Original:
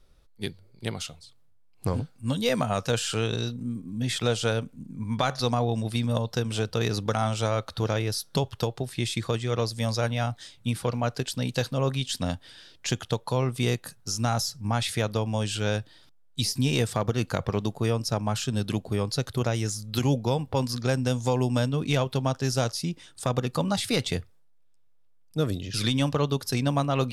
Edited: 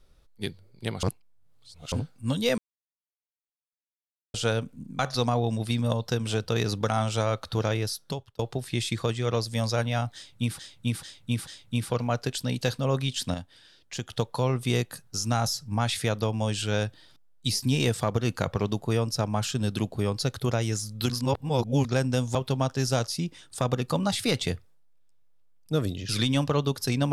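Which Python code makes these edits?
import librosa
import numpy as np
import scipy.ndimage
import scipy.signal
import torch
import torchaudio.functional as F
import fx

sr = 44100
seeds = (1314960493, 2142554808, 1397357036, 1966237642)

y = fx.edit(x, sr, fx.reverse_span(start_s=1.03, length_s=0.89),
    fx.silence(start_s=2.58, length_s=1.76),
    fx.cut(start_s=4.99, length_s=0.25),
    fx.fade_out_span(start_s=8.05, length_s=0.59),
    fx.repeat(start_s=10.4, length_s=0.44, count=4),
    fx.clip_gain(start_s=12.27, length_s=0.76, db=-6.5),
    fx.reverse_span(start_s=20.03, length_s=0.75),
    fx.cut(start_s=21.28, length_s=0.72), tone=tone)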